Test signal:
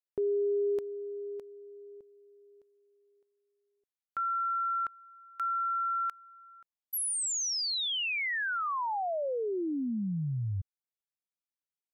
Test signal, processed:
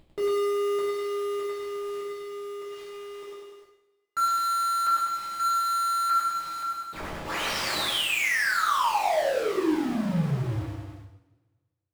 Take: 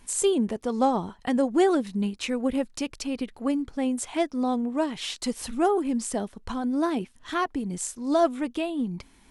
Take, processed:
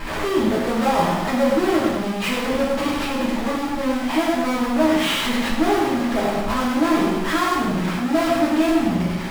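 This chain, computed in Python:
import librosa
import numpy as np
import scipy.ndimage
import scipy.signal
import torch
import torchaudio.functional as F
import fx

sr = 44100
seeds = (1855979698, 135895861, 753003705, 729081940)

p1 = fx.cvsd(x, sr, bps=32000)
p2 = fx.low_shelf(p1, sr, hz=330.0, db=-9.0)
p3 = fx.over_compress(p2, sr, threshold_db=-33.0, ratio=-1.0)
p4 = p2 + (p3 * 10.0 ** (-1.0 / 20.0))
p5 = fx.air_absorb(p4, sr, metres=490.0)
p6 = p5 + fx.echo_feedback(p5, sr, ms=99, feedback_pct=33, wet_db=-6.0, dry=0)
p7 = fx.power_curve(p6, sr, exponent=0.35)
p8 = fx.hum_notches(p7, sr, base_hz=50, count=5)
p9 = fx.rev_double_slope(p8, sr, seeds[0], early_s=0.63, late_s=1.6, knee_db=-18, drr_db=-5.5)
y = p9 * 10.0 ** (-6.0 / 20.0)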